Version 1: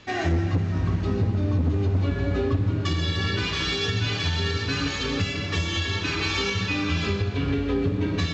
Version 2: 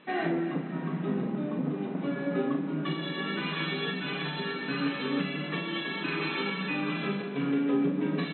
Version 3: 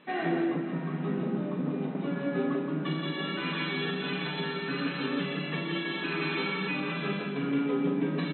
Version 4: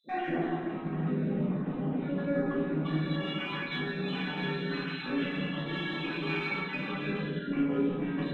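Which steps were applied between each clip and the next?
air absorption 320 m; doubler 39 ms -6 dB; FFT band-pass 130–4100 Hz; gain -2 dB
doubler 12 ms -13 dB; on a send: echo 0.172 s -4.5 dB; on the sum: gain -1.5 dB
random spectral dropouts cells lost 38%; in parallel at -12 dB: one-sided clip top -36.5 dBFS; on the sum: shoebox room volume 380 m³, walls mixed, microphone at 2.3 m; gain -8.5 dB

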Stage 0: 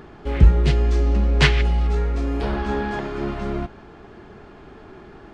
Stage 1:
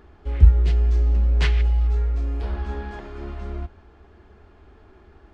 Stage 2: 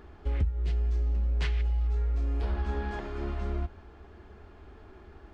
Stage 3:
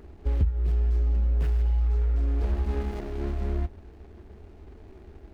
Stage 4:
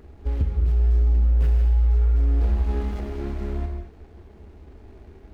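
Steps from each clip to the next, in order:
resonant low shelf 100 Hz +7 dB, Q 3; gain -10 dB
compressor 8:1, threshold -25 dBFS, peak gain reduction 19 dB
median filter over 41 samples; gain +4 dB
non-linear reverb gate 0.25 s flat, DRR 3.5 dB

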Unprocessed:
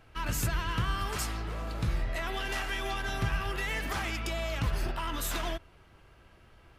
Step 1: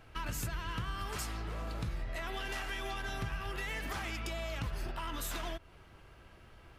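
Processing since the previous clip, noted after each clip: compressor 3:1, threshold -38 dBFS, peak gain reduction 10 dB; gain +1 dB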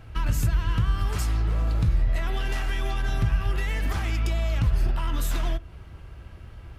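bell 63 Hz +14.5 dB 2.8 oct; on a send at -18 dB: reverb RT60 0.45 s, pre-delay 4 ms; on the sum: gain +4.5 dB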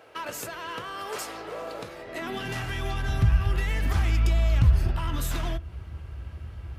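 high-pass sweep 490 Hz -> 66 Hz, 1.98–2.86

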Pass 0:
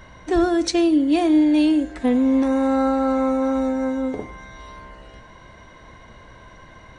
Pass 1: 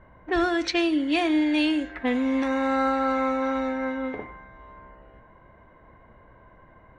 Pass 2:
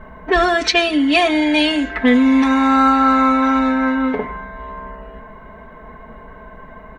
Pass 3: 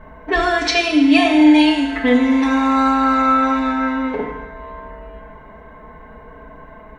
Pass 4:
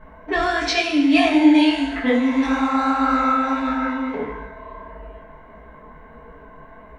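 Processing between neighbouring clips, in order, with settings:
low-pass opened by the level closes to 630 Hz, open at -13.5 dBFS; bell 2200 Hz +14 dB 2.4 oct; gain -8 dB
comb 4.6 ms, depth 96%; in parallel at -1.5 dB: compressor, threshold -31 dBFS, peak gain reduction 13.5 dB; on the sum: gain +6.5 dB
FDN reverb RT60 1.1 s, low-frequency decay 0.95×, high-frequency decay 1×, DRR 1.5 dB; gain -3.5 dB
detuned doubles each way 55 cents

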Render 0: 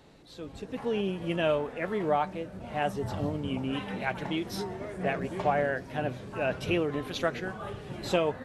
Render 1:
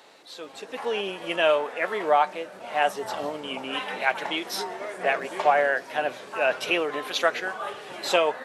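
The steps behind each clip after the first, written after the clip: HPF 620 Hz 12 dB/oct; gain +9 dB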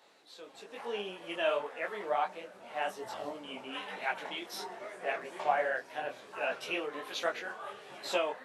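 detuned doubles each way 43 cents; gain -6.5 dB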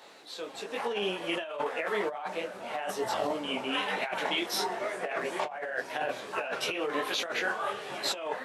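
negative-ratio compressor -39 dBFS, ratio -1; gain +7 dB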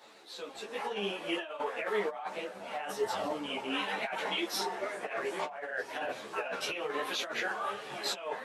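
ensemble effect

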